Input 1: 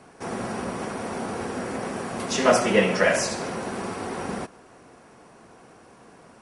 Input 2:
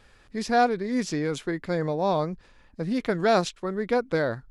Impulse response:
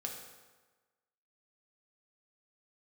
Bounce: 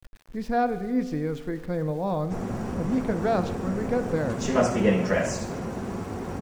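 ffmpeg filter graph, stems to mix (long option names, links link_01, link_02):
-filter_complex "[0:a]equalizer=frequency=7100:width_type=o:width=0.73:gain=13,adelay=2100,volume=-6dB[link_01];[1:a]equalizer=frequency=83:width_type=o:width=1.9:gain=-7.5,bandreject=frequency=380:width=12,volume=-8.5dB,asplit=2[link_02][link_03];[link_03]volume=-4dB[link_04];[2:a]atrim=start_sample=2205[link_05];[link_04][link_05]afir=irnorm=-1:irlink=0[link_06];[link_01][link_02][link_06]amix=inputs=3:normalize=0,aemphasis=mode=reproduction:type=riaa,aeval=exprs='val(0)*gte(abs(val(0)),0.00501)':channel_layout=same"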